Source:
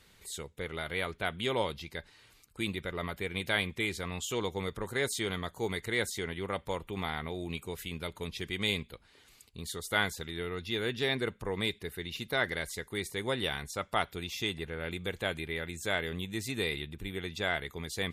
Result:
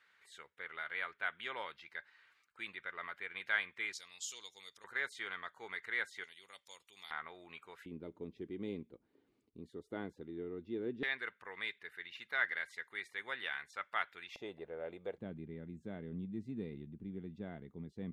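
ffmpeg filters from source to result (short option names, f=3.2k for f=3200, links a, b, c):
-af "asetnsamples=n=441:p=0,asendcmd='3.93 bandpass f 5500;4.84 bandpass f 1600;6.24 bandpass f 5900;7.11 bandpass f 1400;7.86 bandpass f 300;11.03 bandpass f 1700;14.36 bandpass f 600;15.18 bandpass f 210',bandpass=f=1.6k:t=q:w=2.3:csg=0"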